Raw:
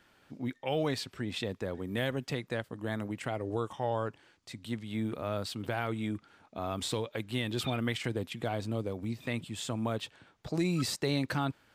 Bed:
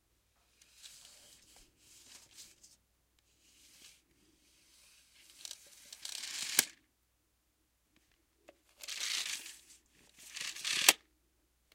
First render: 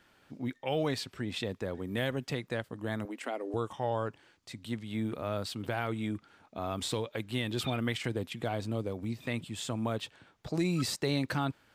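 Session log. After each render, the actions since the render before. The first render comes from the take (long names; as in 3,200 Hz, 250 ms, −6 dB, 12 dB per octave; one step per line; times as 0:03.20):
0:03.05–0:03.54: elliptic high-pass filter 240 Hz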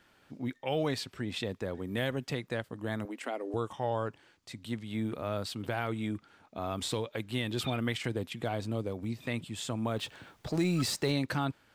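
0:09.96–0:11.12: mu-law and A-law mismatch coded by mu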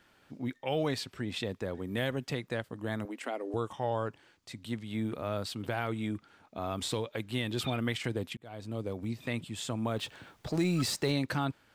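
0:08.37–0:08.92: fade in linear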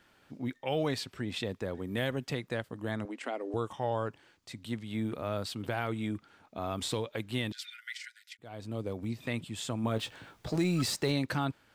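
0:02.91–0:03.55: low-pass filter 8,400 Hz
0:07.52–0:08.39: Chebyshev high-pass with heavy ripple 1,400 Hz, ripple 9 dB
0:09.82–0:10.56: double-tracking delay 18 ms −8.5 dB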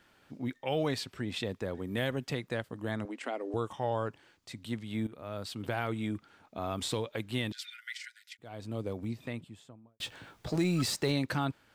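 0:05.07–0:05.68: fade in, from −15 dB
0:08.87–0:10.00: fade out and dull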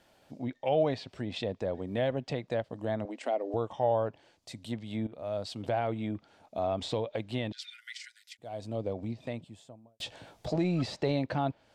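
treble cut that deepens with the level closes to 2,900 Hz, closed at −30 dBFS
drawn EQ curve 410 Hz 0 dB, 640 Hz +9 dB, 1,300 Hz −6 dB, 4,700 Hz +2 dB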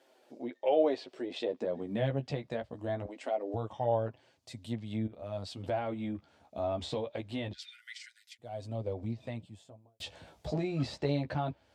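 high-pass filter sweep 370 Hz → 61 Hz, 0:01.43–0:02.43
flanger 0.23 Hz, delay 7.4 ms, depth 7.1 ms, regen −14%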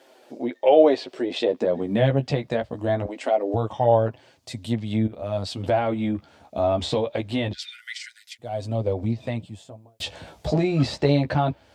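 level +11.5 dB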